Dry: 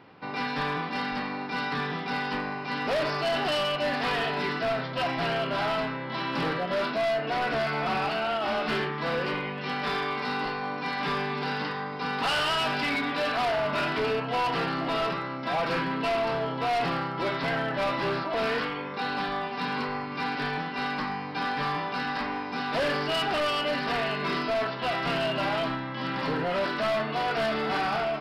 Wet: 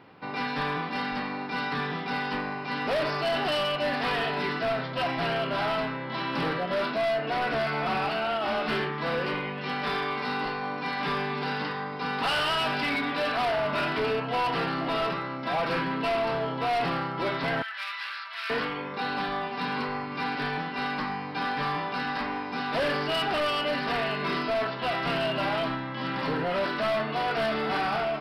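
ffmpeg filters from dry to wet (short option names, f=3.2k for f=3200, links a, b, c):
-filter_complex "[0:a]asettb=1/sr,asplit=3[a][b][c];[a]atrim=end=17.624[d];[b]atrim=start=17.62:end=18.5,asetpts=PTS-STARTPTS,afade=t=in:d=0.004:c=qsin,afade=t=out:st=0.876:d=0.004:c=qsin,highpass=f=1.4k:w=0.5412,highpass=f=1.4k:w=1.3066[e];[c]atrim=start=18.496[f];[d][e]acrossfade=d=0.004:c1=hsin:c2=qsin[g];[g][f]acrossfade=d=0.004:c1=qsin:c2=hsin,equalizer=f=6.8k:t=o:w=0.37:g=-8"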